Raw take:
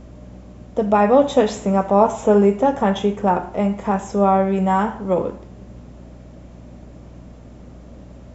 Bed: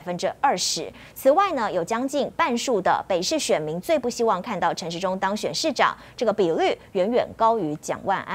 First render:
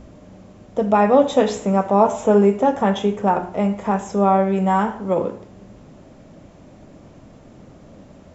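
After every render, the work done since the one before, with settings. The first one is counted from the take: de-hum 60 Hz, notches 10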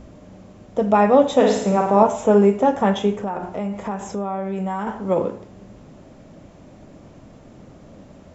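1.35–2.03 flutter echo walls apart 9.2 m, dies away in 0.69 s; 3.22–4.87 compressor 4:1, threshold -23 dBFS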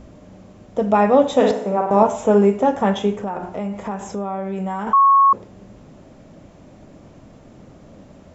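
1.51–1.91 band-pass 640 Hz, Q 0.58; 4.93–5.33 bleep 1100 Hz -9 dBFS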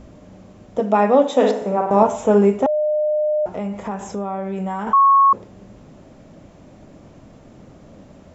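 0.8–1.62 elliptic high-pass 210 Hz; 2.66–3.46 bleep 606 Hz -16 dBFS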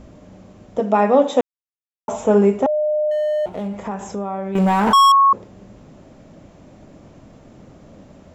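1.41–2.08 mute; 3.11–3.76 median filter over 25 samples; 4.55–5.12 sample leveller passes 3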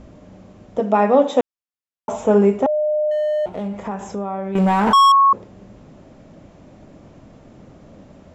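high shelf 9300 Hz -9 dB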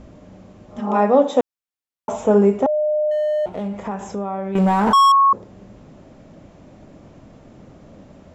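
0.68–0.94 spectral repair 250–1400 Hz both; dynamic EQ 2500 Hz, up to -5 dB, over -33 dBFS, Q 1.2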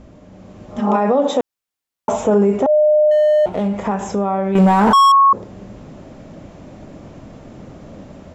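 limiter -14 dBFS, peak gain reduction 10.5 dB; AGC gain up to 7 dB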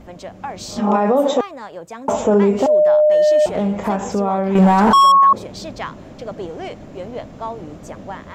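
add bed -9 dB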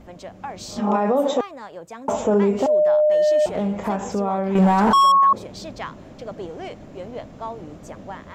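gain -4 dB

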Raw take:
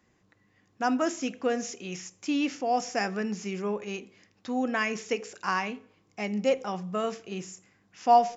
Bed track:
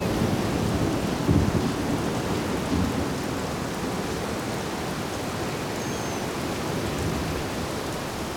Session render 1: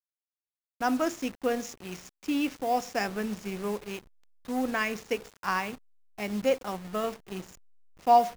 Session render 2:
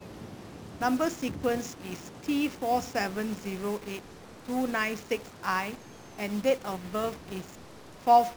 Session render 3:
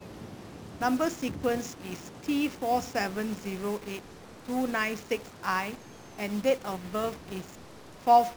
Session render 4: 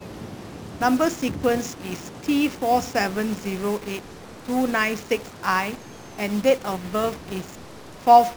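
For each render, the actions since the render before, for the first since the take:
level-crossing sampler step -37.5 dBFS; crossover distortion -46 dBFS
add bed track -19.5 dB
nothing audible
gain +7 dB

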